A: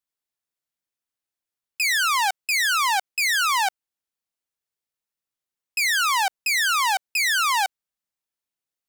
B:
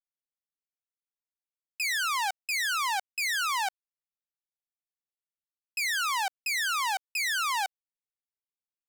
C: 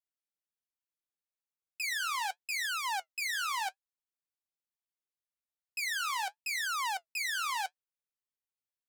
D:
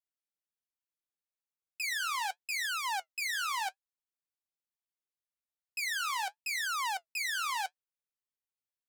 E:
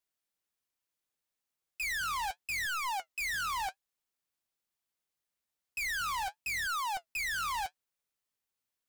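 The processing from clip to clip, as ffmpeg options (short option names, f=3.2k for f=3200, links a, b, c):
-af "anlmdn=15.8,volume=-7.5dB"
-af "flanger=delay=3.3:depth=6.3:regen=-59:speed=0.75:shape=triangular,volume=-1dB"
-af anull
-af "asoftclip=type=hard:threshold=-39dB,volume=6dB"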